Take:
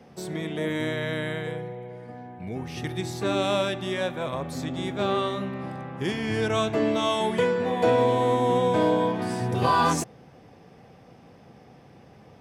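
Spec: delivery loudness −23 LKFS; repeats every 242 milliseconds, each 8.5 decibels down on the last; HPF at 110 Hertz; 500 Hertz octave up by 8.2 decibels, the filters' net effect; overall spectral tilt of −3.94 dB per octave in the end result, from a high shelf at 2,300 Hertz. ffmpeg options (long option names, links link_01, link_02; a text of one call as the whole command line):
ffmpeg -i in.wav -af "highpass=110,equalizer=frequency=500:width_type=o:gain=9,highshelf=frequency=2300:gain=3.5,aecho=1:1:242|484|726|968:0.376|0.143|0.0543|0.0206,volume=-3.5dB" out.wav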